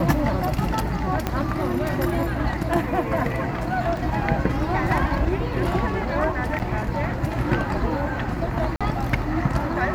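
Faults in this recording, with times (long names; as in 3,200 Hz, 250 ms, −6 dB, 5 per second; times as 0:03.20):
0:01.27: click −9 dBFS
0:03.97: drop-out 2.2 ms
0:06.59–0:06.60: drop-out 8.5 ms
0:08.76–0:08.81: drop-out 46 ms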